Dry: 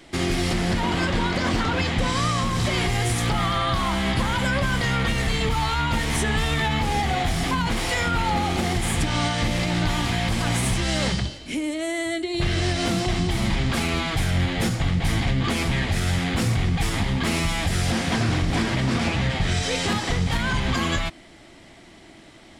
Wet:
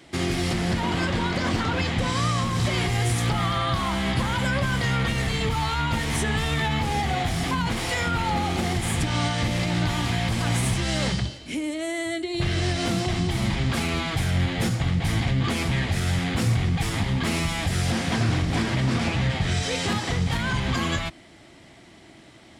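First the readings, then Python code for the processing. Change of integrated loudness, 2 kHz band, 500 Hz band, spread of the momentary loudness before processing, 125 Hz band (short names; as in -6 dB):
-1.5 dB, -2.0 dB, -2.0 dB, 1 LU, 0.0 dB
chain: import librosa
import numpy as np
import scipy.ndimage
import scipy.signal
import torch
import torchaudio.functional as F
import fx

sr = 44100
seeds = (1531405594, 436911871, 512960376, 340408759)

y = scipy.signal.sosfilt(scipy.signal.butter(2, 48.0, 'highpass', fs=sr, output='sos'), x)
y = fx.peak_eq(y, sr, hz=120.0, db=3.5, octaves=0.77)
y = y * librosa.db_to_amplitude(-2.0)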